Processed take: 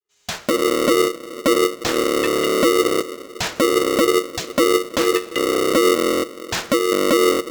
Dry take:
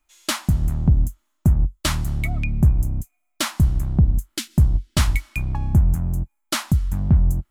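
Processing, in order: opening faded in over 0.77 s; in parallel at -2.5 dB: compressor, threshold -23 dBFS, peak gain reduction 12 dB; on the sum: downsampling 16000 Hz; on a send at -18.5 dB: reverb RT60 2.9 s, pre-delay 6 ms; on the sum: limiter -10.5 dBFS, peak gain reduction 5.5 dB; polarity switched at an audio rate 410 Hz

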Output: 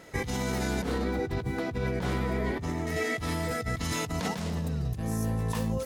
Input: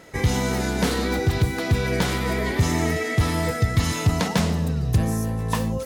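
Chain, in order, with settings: 0.82–2.87 high shelf 2200 Hz -11.5 dB; negative-ratio compressor -25 dBFS, ratio -1; gain -5.5 dB

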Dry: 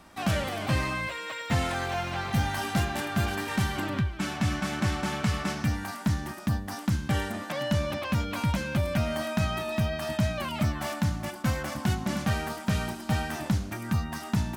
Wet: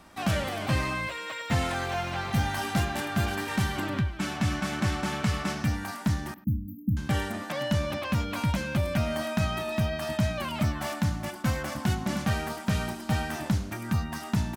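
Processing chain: 6.34–6.97 brick-wall FIR band-stop 320–13000 Hz; speakerphone echo 0.1 s, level -18 dB

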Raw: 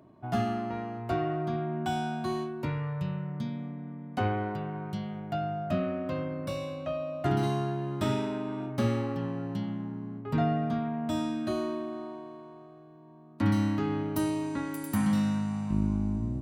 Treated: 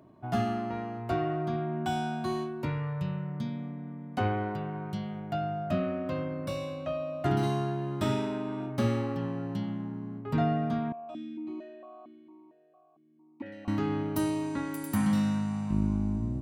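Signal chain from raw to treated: 10.92–13.68 vowel sequencer 4.4 Hz

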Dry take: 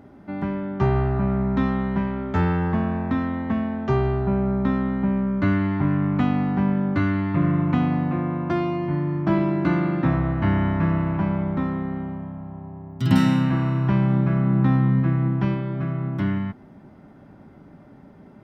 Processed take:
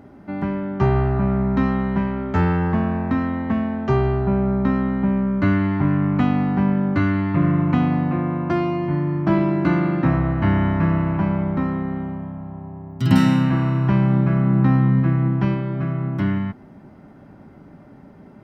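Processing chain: notch 3500 Hz, Q 14; gain +2.5 dB

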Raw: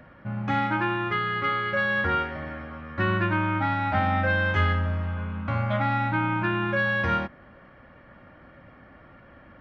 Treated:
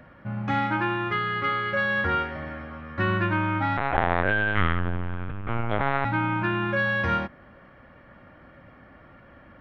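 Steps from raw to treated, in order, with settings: 3.77–6.05 LPC vocoder at 8 kHz pitch kept

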